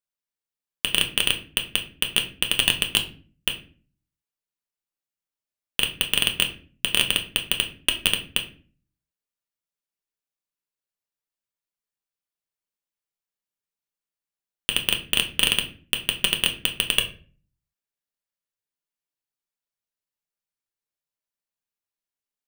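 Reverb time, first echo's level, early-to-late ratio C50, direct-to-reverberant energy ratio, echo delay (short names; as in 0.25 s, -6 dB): 0.40 s, none, 12.0 dB, 3.0 dB, none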